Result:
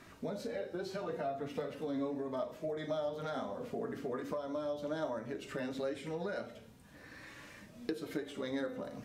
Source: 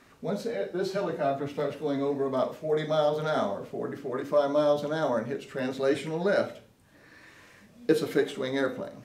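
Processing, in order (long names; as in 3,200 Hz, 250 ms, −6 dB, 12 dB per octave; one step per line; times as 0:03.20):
downward compressor 10 to 1, threshold −36 dBFS, peak gain reduction 19 dB
flanger 0.38 Hz, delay 3 ms, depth 1.4 ms, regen +60%
noise in a band 63–210 Hz −69 dBFS
level +5 dB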